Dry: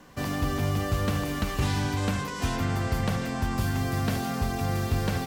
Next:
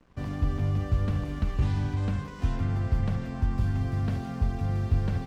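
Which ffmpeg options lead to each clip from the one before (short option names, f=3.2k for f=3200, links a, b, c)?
-af "aemphasis=mode=reproduction:type=bsi,aeval=exprs='sgn(val(0))*max(abs(val(0))-0.00422,0)':c=same,volume=-8.5dB"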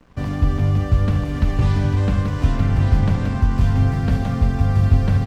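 -af "bandreject=f=360:w=12,aecho=1:1:1175:0.596,volume=9dB"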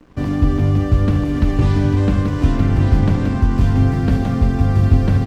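-af "equalizer=f=320:t=o:w=0.72:g=9,volume=1.5dB"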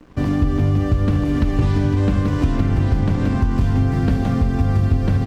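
-af "acompressor=threshold=-15dB:ratio=4,volume=1.5dB"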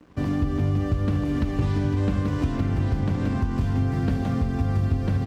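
-af "highpass=51,volume=-5.5dB"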